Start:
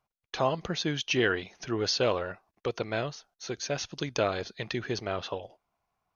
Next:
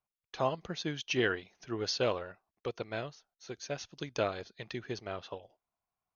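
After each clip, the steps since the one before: upward expansion 1.5:1, over -40 dBFS; trim -3 dB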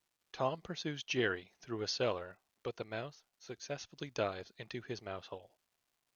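crackle 460 per s -63 dBFS; trim -3.5 dB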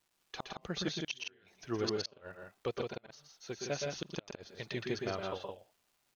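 inverted gate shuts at -27 dBFS, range -38 dB; on a send: multi-tap echo 117/122/164 ms -7/-7/-4.5 dB; on the sum: trim +4 dB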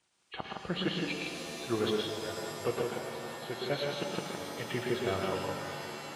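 knee-point frequency compression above 1.9 kHz 1.5:1; high-pass 56 Hz; pitch-shifted reverb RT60 3.6 s, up +7 st, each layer -2 dB, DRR 5 dB; trim +3.5 dB

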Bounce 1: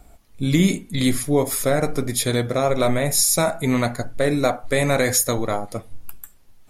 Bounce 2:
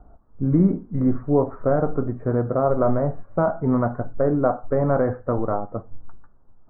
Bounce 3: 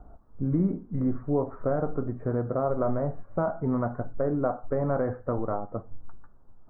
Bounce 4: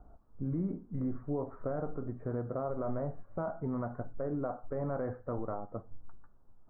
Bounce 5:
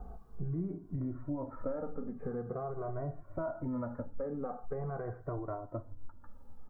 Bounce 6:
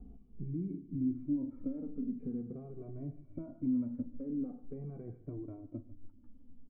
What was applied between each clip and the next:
steep low-pass 1.4 kHz 48 dB/octave
compression 1.5:1, threshold -35 dBFS, peak gain reduction 8 dB
peak limiter -19.5 dBFS, peak gain reduction 5 dB; trim -7 dB
compression 4:1, threshold -46 dBFS, peak gain reduction 13.5 dB; endless flanger 2 ms -0.44 Hz; trim +12.5 dB
cascade formant filter i; feedback delay 146 ms, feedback 38%, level -19.5 dB; trim +7 dB

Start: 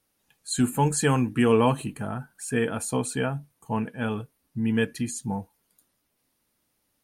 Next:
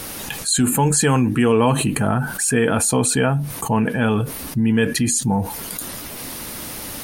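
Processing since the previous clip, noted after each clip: level flattener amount 70%; trim +2.5 dB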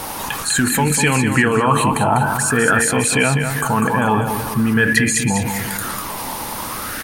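peak limiter -11 dBFS, peak gain reduction 7 dB; feedback delay 198 ms, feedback 48%, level -7 dB; sweeping bell 0.47 Hz 880–2300 Hz +15 dB; trim +1.5 dB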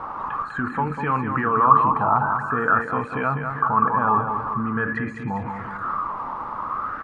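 resonant low-pass 1.2 kHz, resonance Q 7.5; trim -10 dB

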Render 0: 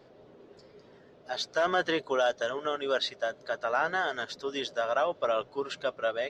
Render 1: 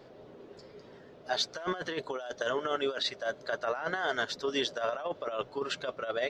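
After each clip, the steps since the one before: compressor with a negative ratio -31 dBFS, ratio -0.5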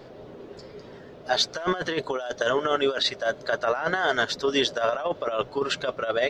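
bass shelf 94 Hz +6 dB; trim +7.5 dB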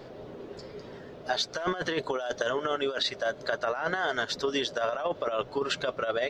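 compression, threshold -25 dBFS, peak gain reduction 7.5 dB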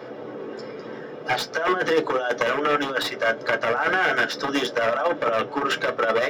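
one-sided wavefolder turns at -26 dBFS; reverberation RT60 0.15 s, pre-delay 3 ms, DRR 4 dB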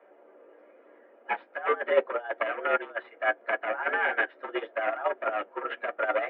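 mistuned SSB +82 Hz 170–2600 Hz; upward expansion 2.5:1, over -30 dBFS

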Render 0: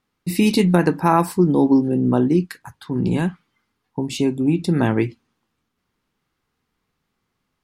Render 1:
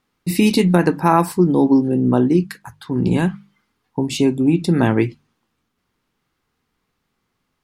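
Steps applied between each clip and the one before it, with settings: hum notches 50/100/150/200 Hz; in parallel at +2 dB: gain riding within 4 dB 0.5 s; on the sum: trim -4.5 dB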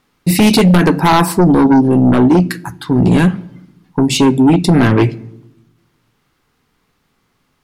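simulated room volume 2600 m³, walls furnished, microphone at 0.32 m; in parallel at -9.5 dB: sine folder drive 12 dB, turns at -1 dBFS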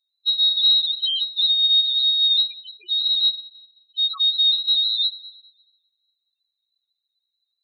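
loudest bins only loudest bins 2; frequency inversion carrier 4 kHz; trim -7 dB

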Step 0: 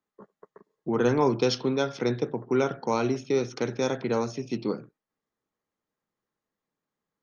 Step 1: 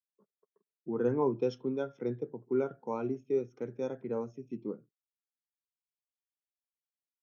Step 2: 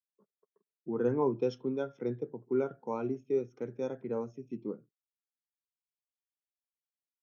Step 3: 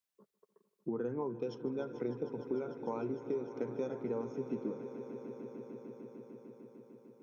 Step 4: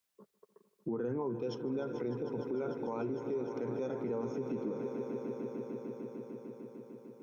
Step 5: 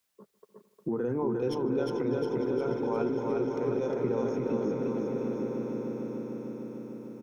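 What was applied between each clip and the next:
peaking EQ 4.5 kHz -13 dB 0.37 oct; spectral contrast expander 1.5:1; trim -6.5 dB
no audible change
compression 12:1, threshold -39 dBFS, peak gain reduction 16 dB; echo with a slow build-up 150 ms, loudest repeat 5, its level -15 dB; trim +5.5 dB
peak limiter -34 dBFS, peak gain reduction 9.5 dB; trim +6 dB
tracing distortion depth 0.022 ms; feedback delay 356 ms, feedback 58%, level -3 dB; trim +5 dB

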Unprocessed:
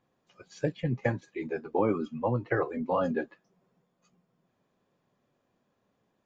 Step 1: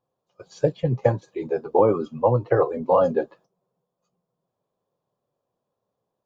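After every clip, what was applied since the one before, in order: gate -58 dBFS, range -13 dB; graphic EQ 125/250/500/1000/2000/4000 Hz +5/-5/+8/+6/-10/+3 dB; trim +3.5 dB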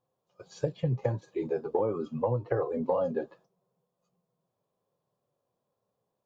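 harmonic-percussive split harmonic +6 dB; compression 10:1, threshold -19 dBFS, peak gain reduction 11 dB; trim -5.5 dB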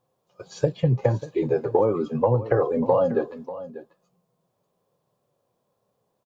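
delay 591 ms -15 dB; trim +8 dB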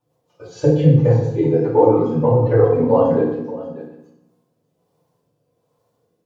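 rotary cabinet horn 6 Hz, later 1.2 Hz, at 3.62 s; FDN reverb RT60 0.84 s, low-frequency decay 1.3×, high-frequency decay 0.8×, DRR -8.5 dB; trim -2 dB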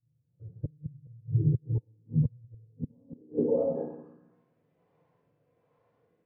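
inverted gate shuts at -7 dBFS, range -38 dB; low-pass sweep 120 Hz -> 2.1 kHz, 2.64–4.45 s; trim -4 dB

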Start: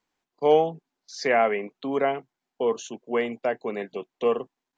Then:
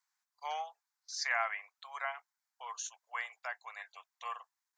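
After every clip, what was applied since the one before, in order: Bessel high-pass 1.6 kHz, order 8; peaking EQ 2.9 kHz -12.5 dB 0.91 oct; trim +2 dB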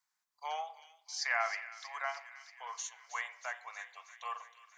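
feedback echo behind a high-pass 317 ms, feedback 67%, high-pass 1.8 kHz, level -12 dB; on a send at -11.5 dB: reverberation RT60 0.80 s, pre-delay 5 ms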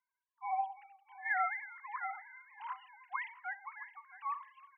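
formants replaced by sine waves; delay 667 ms -17.5 dB

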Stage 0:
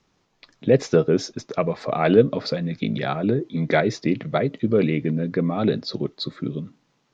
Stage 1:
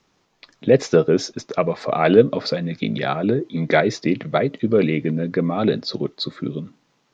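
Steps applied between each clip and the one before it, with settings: bass shelf 170 Hz -6 dB; trim +3.5 dB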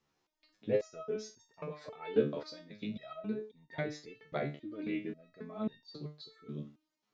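resonator arpeggio 3.7 Hz 73–910 Hz; trim -7 dB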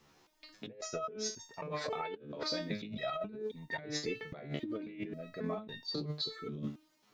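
compressor with a negative ratio -48 dBFS, ratio -1; trim +6.5 dB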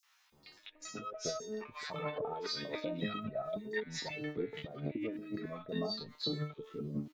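three bands offset in time highs, mids, lows 30/320 ms, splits 1.1/5.6 kHz; trim +1 dB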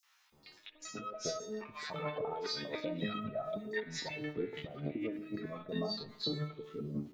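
spring tank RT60 1.1 s, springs 52 ms, chirp 75 ms, DRR 14 dB

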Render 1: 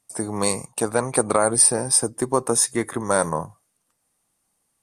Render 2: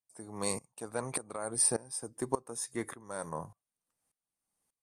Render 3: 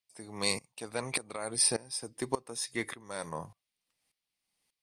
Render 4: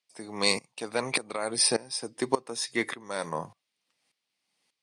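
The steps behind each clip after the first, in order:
sawtooth tremolo in dB swelling 1.7 Hz, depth 20 dB; trim -7.5 dB
high-order bell 3.2 kHz +11 dB
band-pass 170–7400 Hz; trim +6.5 dB

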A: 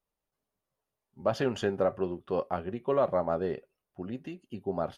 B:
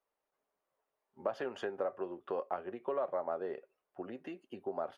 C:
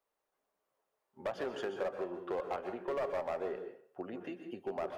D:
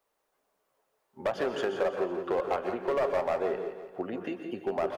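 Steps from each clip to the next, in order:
compression 4:1, threshold -37 dBFS, peak gain reduction 13 dB; three-band isolator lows -20 dB, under 330 Hz, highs -12 dB, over 2.4 kHz; trim +4.5 dB
hard clipper -32 dBFS, distortion -12 dB; on a send at -7 dB: reverberation RT60 0.50 s, pre-delay 117 ms; on the sum: trim +1 dB
feedback delay 170 ms, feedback 52%, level -12 dB; trim +7.5 dB

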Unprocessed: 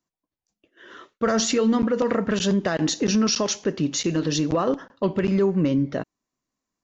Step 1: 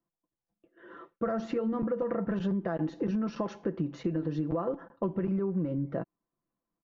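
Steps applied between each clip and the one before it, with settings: low-pass 1.2 kHz 12 dB/octave; comb 5.9 ms, depth 52%; compression, threshold -25 dBFS, peak gain reduction 10 dB; trim -2.5 dB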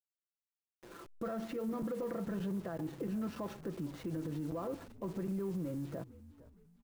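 send-on-delta sampling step -46.5 dBFS; peak limiter -29 dBFS, peak gain reduction 9 dB; frequency-shifting echo 458 ms, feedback 49%, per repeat -54 Hz, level -18.5 dB; trim -2.5 dB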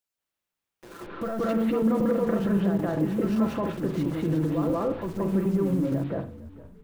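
reverberation, pre-delay 178 ms, DRR -4 dB; trim +7.5 dB

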